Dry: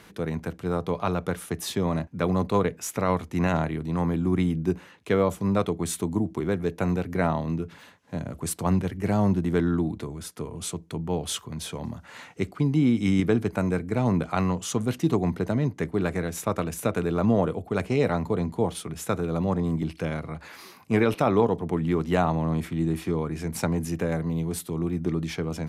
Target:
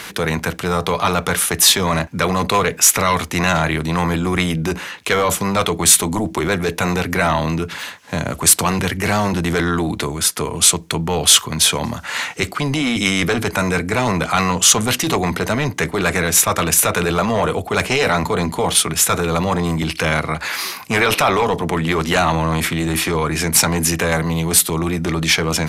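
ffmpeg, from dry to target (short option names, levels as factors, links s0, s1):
-af "apsyclip=21.1,tiltshelf=f=760:g=-7,volume=0.316"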